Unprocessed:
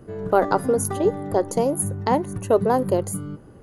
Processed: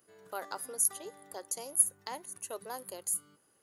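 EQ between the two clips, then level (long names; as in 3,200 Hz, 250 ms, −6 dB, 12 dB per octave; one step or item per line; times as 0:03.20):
first difference
−1.5 dB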